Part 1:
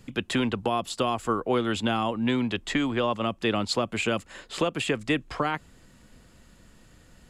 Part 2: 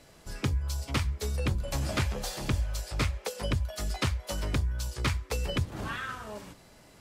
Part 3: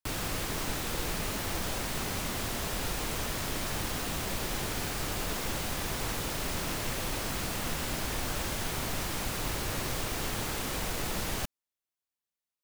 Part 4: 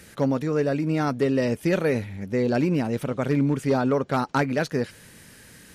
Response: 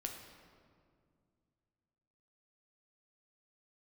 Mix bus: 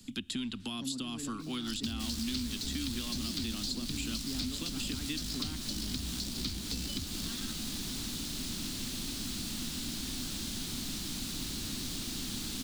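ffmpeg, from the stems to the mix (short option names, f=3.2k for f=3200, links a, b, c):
-filter_complex "[0:a]highshelf=f=6.8k:g=10,volume=-6dB,asplit=3[a][b][c];[b]volume=-15dB[d];[1:a]equalizer=f=4.6k:t=o:w=0.93:g=11,acrusher=bits=6:dc=4:mix=0:aa=0.000001,adelay=1400,volume=-4dB[e];[2:a]adelay=1950,volume=-2dB[f];[3:a]lowpass=6.2k,adelay=600,volume=-13dB,asplit=2[g][h];[h]volume=-8dB[i];[c]apad=whole_len=279660[j];[g][j]sidechaincompress=threshold=-37dB:ratio=8:attack=16:release=126[k];[4:a]atrim=start_sample=2205[l];[d][i]amix=inputs=2:normalize=0[m];[m][l]afir=irnorm=-1:irlink=0[n];[a][e][f][k][n]amix=inputs=5:normalize=0,equalizer=f=125:t=o:w=1:g=-6,equalizer=f=250:t=o:w=1:g=11,equalizer=f=500:t=o:w=1:g=-10,equalizer=f=1k:t=o:w=1:g=-5,equalizer=f=2k:t=o:w=1:g=-6,equalizer=f=4k:t=o:w=1:g=10,equalizer=f=8k:t=o:w=1:g=4,acrossover=split=89|320|1000[o][p][q][r];[o]acompressor=threshold=-43dB:ratio=4[s];[p]acompressor=threshold=-39dB:ratio=4[t];[q]acompressor=threshold=-58dB:ratio=4[u];[r]acompressor=threshold=-38dB:ratio=4[v];[s][t][u][v]amix=inputs=4:normalize=0"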